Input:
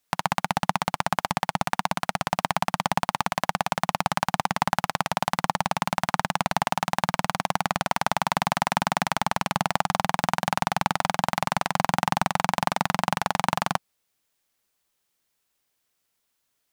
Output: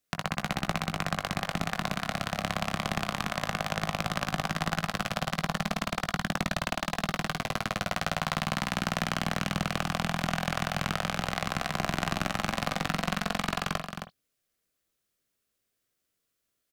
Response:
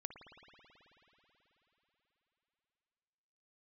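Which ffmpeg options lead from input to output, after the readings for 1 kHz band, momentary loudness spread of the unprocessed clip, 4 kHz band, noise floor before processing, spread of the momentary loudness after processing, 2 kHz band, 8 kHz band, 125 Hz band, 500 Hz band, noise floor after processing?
−9.0 dB, 2 LU, −2.0 dB, −76 dBFS, 2 LU, −3.0 dB, −4.5 dB, −0.5 dB, −4.0 dB, −81 dBFS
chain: -filter_complex "[0:a]equalizer=frequency=890:width=3.9:gain=-13.5,acrossover=split=1300[link_01][link_02];[link_01]aeval=exprs='clip(val(0),-1,0.0473)':channel_layout=same[link_03];[link_03][link_02]amix=inputs=2:normalize=0,asplit=2[link_04][link_05];[link_05]adelay=19,volume=-10dB[link_06];[link_04][link_06]amix=inputs=2:normalize=0,aecho=1:1:266:0.447[link_07];[1:a]atrim=start_sample=2205,atrim=end_sample=3969,asetrate=48510,aresample=44100[link_08];[link_07][link_08]afir=irnorm=-1:irlink=0,asplit=2[link_09][link_10];[link_10]adynamicsmooth=sensitivity=6:basefreq=1700,volume=-2dB[link_11];[link_09][link_11]amix=inputs=2:normalize=0"

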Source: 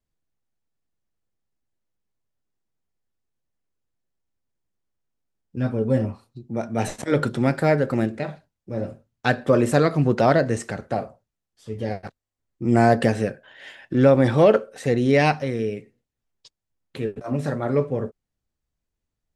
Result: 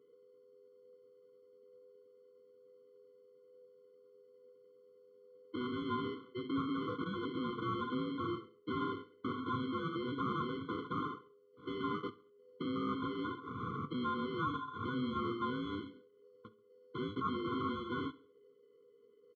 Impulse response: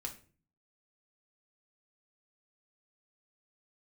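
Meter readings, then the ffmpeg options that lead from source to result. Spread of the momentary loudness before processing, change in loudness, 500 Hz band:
15 LU, −17.0 dB, −21.5 dB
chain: -filter_complex "[0:a]tiltshelf=frequency=970:gain=6,bandreject=frequency=760:width=12,acompressor=threshold=-28dB:ratio=6,alimiter=level_in=2.5dB:limit=-24dB:level=0:latency=1:release=100,volume=-2.5dB,aeval=exprs='val(0)*sin(2*PI*500*n/s)':channel_layout=same,asplit=2[link_01][link_02];[link_02]highpass=frequency=720:poles=1,volume=23dB,asoftclip=type=tanh:threshold=-26.5dB[link_03];[link_01][link_03]amix=inputs=2:normalize=0,lowpass=frequency=1900:poles=1,volume=-6dB,acrusher=samples=18:mix=1:aa=0.000001,aeval=exprs='val(0)+0.000562*sin(2*PI*410*n/s)':channel_layout=same,flanger=delay=5.9:depth=4.2:regen=82:speed=0.28:shape=triangular,highpass=frequency=100:width=0.5412,highpass=frequency=100:width=1.3066,equalizer=frequency=100:width_type=q:width=4:gain=4,equalizer=frequency=260:width_type=q:width=4:gain=4,equalizer=frequency=390:width_type=q:width=4:gain=-6,equalizer=frequency=580:width_type=q:width=4:gain=9,equalizer=frequency=1300:width_type=q:width=4:gain=-5,equalizer=frequency=1900:width_type=q:width=4:gain=-8,lowpass=frequency=2500:width=0.5412,lowpass=frequency=2500:width=1.3066,asplit=2[link_04][link_05];[link_05]aecho=0:1:68|136|204:0.0891|0.041|0.0189[link_06];[link_04][link_06]amix=inputs=2:normalize=0,afftfilt=real='re*eq(mod(floor(b*sr/1024/500),2),0)':imag='im*eq(mod(floor(b*sr/1024/500),2),0)':win_size=1024:overlap=0.75,volume=7.5dB"

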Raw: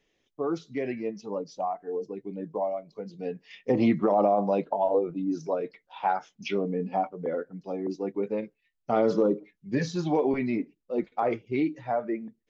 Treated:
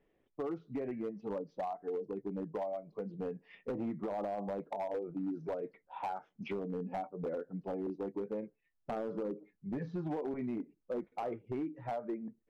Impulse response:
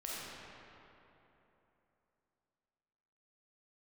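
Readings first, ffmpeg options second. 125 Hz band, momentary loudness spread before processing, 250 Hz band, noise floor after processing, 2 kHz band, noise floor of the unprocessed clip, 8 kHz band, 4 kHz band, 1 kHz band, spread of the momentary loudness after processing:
−8.5 dB, 13 LU, −10.0 dB, −79 dBFS, −13.0 dB, −78 dBFS, can't be measured, −15.5 dB, −11.5 dB, 5 LU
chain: -af "lowpass=1300,acompressor=threshold=-35dB:ratio=8,asoftclip=type=hard:threshold=-32.5dB,volume=1dB"

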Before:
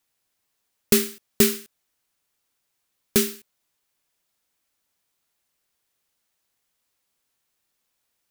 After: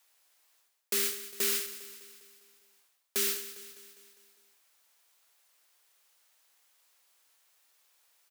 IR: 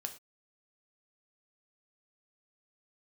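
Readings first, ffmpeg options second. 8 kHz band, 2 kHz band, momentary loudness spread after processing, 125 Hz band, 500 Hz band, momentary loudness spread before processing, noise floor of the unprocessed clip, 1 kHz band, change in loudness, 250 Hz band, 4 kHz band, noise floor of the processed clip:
−5.5 dB, −6.0 dB, 19 LU, below −25 dB, −14.0 dB, 11 LU, −77 dBFS, −7.0 dB, −9.0 dB, −22.5 dB, −5.5 dB, −74 dBFS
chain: -af "highpass=570,areverse,acompressor=threshold=-35dB:ratio=10,areverse,aecho=1:1:202|404|606|808|1010|1212:0.2|0.11|0.0604|0.0332|0.0183|0.01,volume=7.5dB"

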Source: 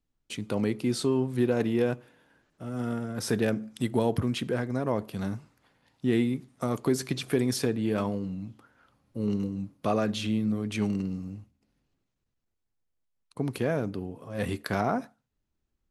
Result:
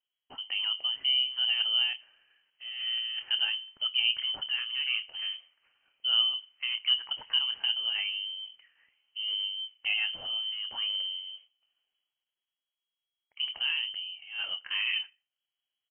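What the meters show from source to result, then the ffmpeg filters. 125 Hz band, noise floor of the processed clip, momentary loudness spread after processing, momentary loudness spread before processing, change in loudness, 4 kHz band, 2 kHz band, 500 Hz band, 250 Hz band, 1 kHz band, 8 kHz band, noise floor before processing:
below −35 dB, below −85 dBFS, 12 LU, 11 LU, +1.0 dB, +17.0 dB, +5.5 dB, below −30 dB, below −40 dB, −14.0 dB, below −40 dB, −81 dBFS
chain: -filter_complex "[0:a]lowshelf=frequency=160:width_type=q:width=1.5:gain=-13,acrossover=split=1300[link_01][link_02];[link_01]asplit=2[link_03][link_04];[link_04]adelay=26,volume=-6dB[link_05];[link_03][link_05]amix=inputs=2:normalize=0[link_06];[link_02]asoftclip=type=tanh:threshold=-32dB[link_07];[link_06][link_07]amix=inputs=2:normalize=0,lowpass=frequency=2800:width_type=q:width=0.5098,lowpass=frequency=2800:width_type=q:width=0.6013,lowpass=frequency=2800:width_type=q:width=0.9,lowpass=frequency=2800:width_type=q:width=2.563,afreqshift=-3300,volume=-4.5dB"

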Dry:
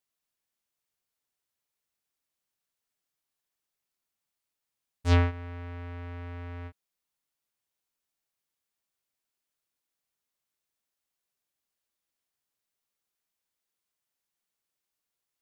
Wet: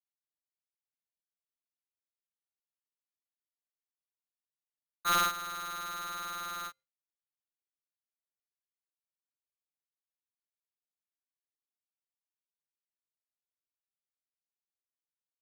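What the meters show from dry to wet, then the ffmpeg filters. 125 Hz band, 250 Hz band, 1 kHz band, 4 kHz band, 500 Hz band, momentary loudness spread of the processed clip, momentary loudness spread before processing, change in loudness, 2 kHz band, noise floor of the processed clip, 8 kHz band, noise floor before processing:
−26.5 dB, −15.0 dB, +8.0 dB, +7.0 dB, −9.5 dB, 12 LU, 17 LU, −2.0 dB, +1.5 dB, below −85 dBFS, can't be measured, below −85 dBFS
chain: -filter_complex "[0:a]lowpass=frequency=2100:width=0.5412,lowpass=frequency=2100:width=1.3066,bandreject=frequency=386.7:width_type=h:width=4,bandreject=frequency=773.4:width_type=h:width=4,bandreject=frequency=1160.1:width_type=h:width=4,bandreject=frequency=1546.8:width_type=h:width=4,bandreject=frequency=1933.5:width_type=h:width=4,bandreject=frequency=2320.2:width_type=h:width=4,bandreject=frequency=2706.9:width_type=h:width=4,bandreject=frequency=3093.6:width_type=h:width=4,bandreject=frequency=3480.3:width_type=h:width=4,bandreject=frequency=3867:width_type=h:width=4,bandreject=frequency=4253.7:width_type=h:width=4,bandreject=frequency=4640.4:width_type=h:width=4,bandreject=frequency=5027.1:width_type=h:width=4,bandreject=frequency=5413.8:width_type=h:width=4,bandreject=frequency=5800.5:width_type=h:width=4,bandreject=frequency=6187.2:width_type=h:width=4,bandreject=frequency=6573.9:width_type=h:width=4,bandreject=frequency=6960.6:width_type=h:width=4,bandreject=frequency=7347.3:width_type=h:width=4,bandreject=frequency=7734:width_type=h:width=4,bandreject=frequency=8120.7:width_type=h:width=4,bandreject=frequency=8507.4:width_type=h:width=4,bandreject=frequency=8894.1:width_type=h:width=4,bandreject=frequency=9280.8:width_type=h:width=4,bandreject=frequency=9667.5:width_type=h:width=4,bandreject=frequency=10054.2:width_type=h:width=4,bandreject=frequency=10440.9:width_type=h:width=4,agate=range=-33dB:threshold=-55dB:ratio=3:detection=peak,acrossover=split=1500[link_01][link_02];[link_01]asoftclip=type=tanh:threshold=-26dB[link_03];[link_03][link_02]amix=inputs=2:normalize=0,aeval=exprs='val(0)*sgn(sin(2*PI*1300*n/s))':channel_layout=same"

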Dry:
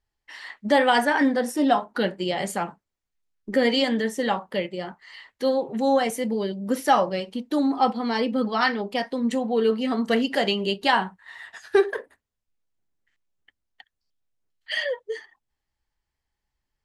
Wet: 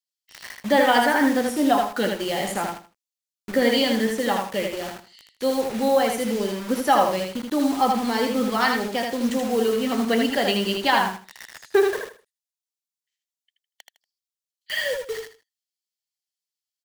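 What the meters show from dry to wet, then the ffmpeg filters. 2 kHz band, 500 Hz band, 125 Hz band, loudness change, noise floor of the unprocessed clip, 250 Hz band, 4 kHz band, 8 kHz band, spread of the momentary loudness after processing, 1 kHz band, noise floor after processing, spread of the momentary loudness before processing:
+1.5 dB, +1.5 dB, +0.5 dB, +1.5 dB, −83 dBFS, +1.0 dB, +2.0 dB, +6.0 dB, 13 LU, +1.5 dB, below −85 dBFS, 13 LU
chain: -filter_complex "[0:a]bandreject=frequency=60:width_type=h:width=6,bandreject=frequency=120:width_type=h:width=6,bandreject=frequency=180:width_type=h:width=6,acrossover=split=3200[link_01][link_02];[link_01]acrusher=bits=5:mix=0:aa=0.000001[link_03];[link_03][link_02]amix=inputs=2:normalize=0,aecho=1:1:79|158|237:0.631|0.145|0.0334"

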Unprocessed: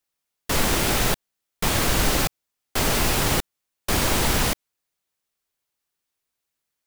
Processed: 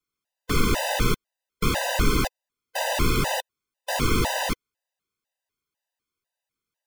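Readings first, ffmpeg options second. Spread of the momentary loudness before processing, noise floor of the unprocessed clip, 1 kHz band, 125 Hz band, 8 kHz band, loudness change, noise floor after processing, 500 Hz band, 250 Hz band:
10 LU, −82 dBFS, −1.0 dB, −1.0 dB, −7.0 dB, −3.0 dB, below −85 dBFS, −1.0 dB, −0.5 dB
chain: -af "highshelf=frequency=4600:gain=-8.5,afftfilt=real='re*gt(sin(2*PI*2*pts/sr)*(1-2*mod(floor(b*sr/1024/510),2)),0)':imag='im*gt(sin(2*PI*2*pts/sr)*(1-2*mod(floor(b*sr/1024/510),2)),0)':win_size=1024:overlap=0.75,volume=2.5dB"

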